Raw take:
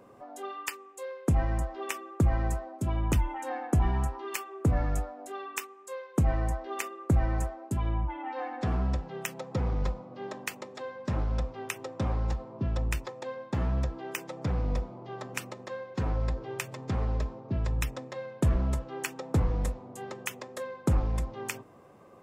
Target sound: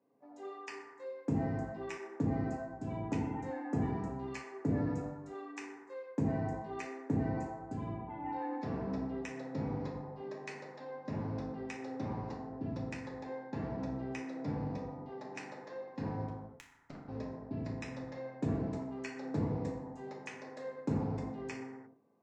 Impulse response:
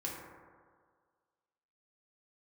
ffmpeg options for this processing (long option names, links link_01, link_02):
-filter_complex "[0:a]highpass=frequency=110:width=0.5412,highpass=frequency=110:width=1.3066,equalizer=frequency=120:width_type=q:width=4:gain=-4,equalizer=frequency=210:width_type=q:width=4:gain=5,equalizer=frequency=1300:width_type=q:width=4:gain=-8,equalizer=frequency=3200:width_type=q:width=4:gain=-9,lowpass=frequency=5700:width=0.5412,lowpass=frequency=5700:width=1.3066,asettb=1/sr,asplit=3[link_01][link_02][link_03];[link_01]atrim=end=16.244[link_04];[link_02]atrim=start=16.24:end=17.08,asetpts=PTS-STARTPTS,afade=type=in:duration=0.004:curve=qsin,afade=type=out:start_time=0.836:duration=0.004:curve=qsin,aeval=exprs='0.112*(cos(1*acos(clip(val(0)/0.112,-1,1)))-cos(1*PI/2))+0.0398*(cos(3*acos(clip(val(0)/0.112,-1,1)))-cos(3*PI/2))+0.0112*(cos(4*acos(clip(val(0)/0.112,-1,1)))-cos(4*PI/2))+0.01*(cos(6*acos(clip(val(0)/0.112,-1,1)))-cos(6*PI/2))':channel_layout=same[link_05];[link_03]atrim=start=17.076[link_06];[link_04][link_05]acrossfade=duration=0.004:curve1=hsin:curve2=qsin[link_07];[link_07][link_06]acrossfade=duration=0.004:curve1=qsin:curve2=hsin,asettb=1/sr,asplit=3[link_08][link_09][link_10];[link_08]atrim=end=18.614[link_11];[link_09]atrim=start=18.61:end=19.11,asetpts=PTS-STARTPTS,afade=type=in:duration=0.004:curve=qsin,afade=type=out:start_time=0.496:duration=0.004:curve=qsin,lowshelf=frequency=240:gain=-11.5[link_12];[link_10]atrim=start=19.106[link_13];[link_11][link_12]acrossfade=duration=0.004:curve1=hsin:curve2=qsin[link_14];[link_14][link_13]acrossfade=duration=0.004:curve1=qsin:curve2=hsin,agate=range=-15dB:threshold=-45dB:ratio=16:detection=peak[link_15];[1:a]atrim=start_sample=2205,afade=type=out:start_time=0.36:duration=0.01,atrim=end_sample=16317,asetrate=37926,aresample=44100[link_16];[link_15][link_16]afir=irnorm=-1:irlink=0,volume=-7dB"